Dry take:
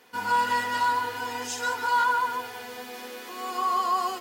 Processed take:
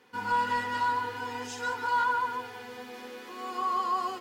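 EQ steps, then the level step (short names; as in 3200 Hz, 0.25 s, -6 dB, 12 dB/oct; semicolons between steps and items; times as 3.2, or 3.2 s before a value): Butterworth band-stop 660 Hz, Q 5.2; LPF 3800 Hz 6 dB/oct; low shelf 220 Hz +6 dB; -3.5 dB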